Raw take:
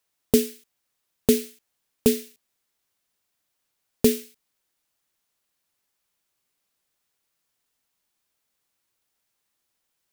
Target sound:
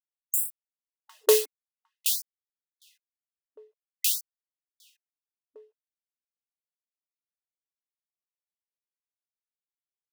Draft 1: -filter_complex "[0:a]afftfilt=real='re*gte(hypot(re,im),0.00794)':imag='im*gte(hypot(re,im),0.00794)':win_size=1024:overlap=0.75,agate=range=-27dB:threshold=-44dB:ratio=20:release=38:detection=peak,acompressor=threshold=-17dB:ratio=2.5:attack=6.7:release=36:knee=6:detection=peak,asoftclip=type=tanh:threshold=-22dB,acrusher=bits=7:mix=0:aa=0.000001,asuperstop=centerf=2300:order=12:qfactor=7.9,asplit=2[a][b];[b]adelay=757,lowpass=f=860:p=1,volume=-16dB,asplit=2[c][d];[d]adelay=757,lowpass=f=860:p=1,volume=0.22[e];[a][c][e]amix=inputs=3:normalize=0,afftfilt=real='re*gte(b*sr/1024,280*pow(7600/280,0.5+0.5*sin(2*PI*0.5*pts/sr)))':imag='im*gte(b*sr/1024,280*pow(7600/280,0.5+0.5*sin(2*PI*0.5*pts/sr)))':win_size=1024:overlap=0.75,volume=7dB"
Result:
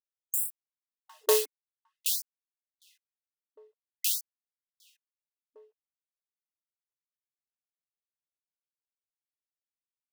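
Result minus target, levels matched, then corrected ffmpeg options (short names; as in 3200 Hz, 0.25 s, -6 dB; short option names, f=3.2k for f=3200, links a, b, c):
soft clip: distortion +7 dB
-filter_complex "[0:a]afftfilt=real='re*gte(hypot(re,im),0.00794)':imag='im*gte(hypot(re,im),0.00794)':win_size=1024:overlap=0.75,agate=range=-27dB:threshold=-44dB:ratio=20:release=38:detection=peak,acompressor=threshold=-17dB:ratio=2.5:attack=6.7:release=36:knee=6:detection=peak,asoftclip=type=tanh:threshold=-13dB,acrusher=bits=7:mix=0:aa=0.000001,asuperstop=centerf=2300:order=12:qfactor=7.9,asplit=2[a][b];[b]adelay=757,lowpass=f=860:p=1,volume=-16dB,asplit=2[c][d];[d]adelay=757,lowpass=f=860:p=1,volume=0.22[e];[a][c][e]amix=inputs=3:normalize=0,afftfilt=real='re*gte(b*sr/1024,280*pow(7600/280,0.5+0.5*sin(2*PI*0.5*pts/sr)))':imag='im*gte(b*sr/1024,280*pow(7600/280,0.5+0.5*sin(2*PI*0.5*pts/sr)))':win_size=1024:overlap=0.75,volume=7dB"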